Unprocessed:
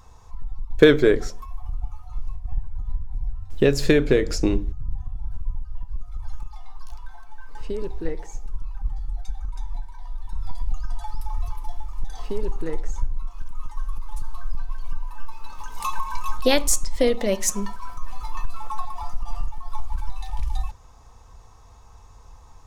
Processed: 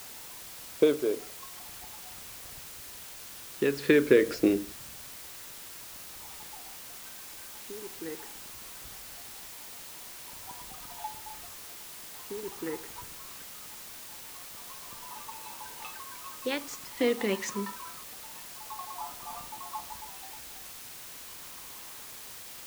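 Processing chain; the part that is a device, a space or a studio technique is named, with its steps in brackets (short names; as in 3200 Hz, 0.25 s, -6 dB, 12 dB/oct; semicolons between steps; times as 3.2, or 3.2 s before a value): shortwave radio (BPF 280–2800 Hz; tremolo 0.46 Hz, depth 75%; LFO notch sine 0.22 Hz 590–1800 Hz; white noise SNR 10 dB); gain +1.5 dB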